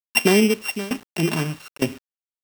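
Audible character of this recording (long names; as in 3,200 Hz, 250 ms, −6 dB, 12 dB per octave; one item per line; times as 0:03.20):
a buzz of ramps at a fixed pitch in blocks of 16 samples
tremolo saw down 1.1 Hz, depth 90%
a quantiser's noise floor 8 bits, dither none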